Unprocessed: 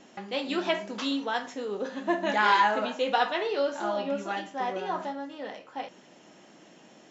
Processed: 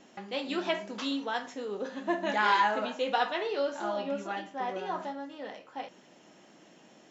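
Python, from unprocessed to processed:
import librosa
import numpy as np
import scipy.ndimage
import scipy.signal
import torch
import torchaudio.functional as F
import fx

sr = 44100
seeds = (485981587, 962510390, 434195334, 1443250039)

y = fx.high_shelf(x, sr, hz=6300.0, db=-9.5, at=(4.27, 4.69))
y = y * 10.0 ** (-3.0 / 20.0)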